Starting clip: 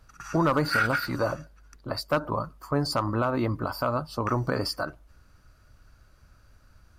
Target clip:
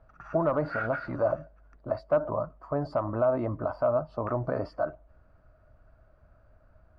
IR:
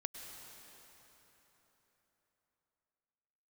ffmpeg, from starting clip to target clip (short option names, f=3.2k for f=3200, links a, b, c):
-filter_complex "[0:a]asplit=2[a][b];[b]alimiter=level_in=1dB:limit=-24dB:level=0:latency=1:release=17,volume=-1dB,volume=0dB[c];[a][c]amix=inputs=2:normalize=0,lowpass=1.5k,equalizer=f=640:t=o:w=0.36:g=14.5,volume=-9dB"